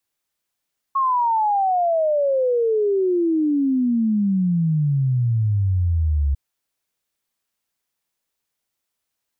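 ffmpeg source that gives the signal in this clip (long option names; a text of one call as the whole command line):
ffmpeg -f lavfi -i "aevalsrc='0.158*clip(min(t,5.4-t)/0.01,0,1)*sin(2*PI*1100*5.4/log(68/1100)*(exp(log(68/1100)*t/5.4)-1))':duration=5.4:sample_rate=44100" out.wav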